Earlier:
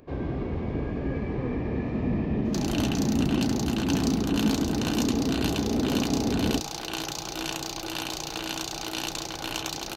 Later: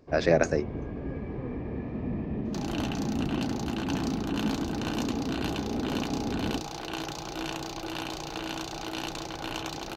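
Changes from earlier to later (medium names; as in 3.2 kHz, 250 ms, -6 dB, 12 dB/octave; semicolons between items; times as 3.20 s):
speech: unmuted; first sound -5.5 dB; master: add treble shelf 3.7 kHz -11 dB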